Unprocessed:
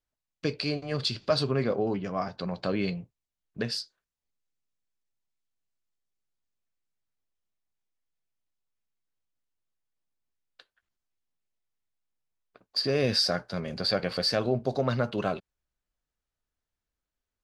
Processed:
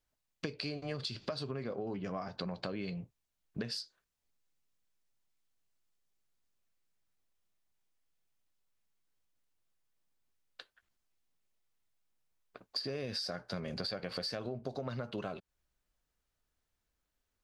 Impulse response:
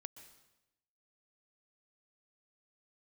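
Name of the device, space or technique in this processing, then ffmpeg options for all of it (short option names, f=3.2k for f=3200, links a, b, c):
serial compression, leveller first: -af "acompressor=threshold=-28dB:ratio=2.5,acompressor=threshold=-40dB:ratio=6,volume=4dB"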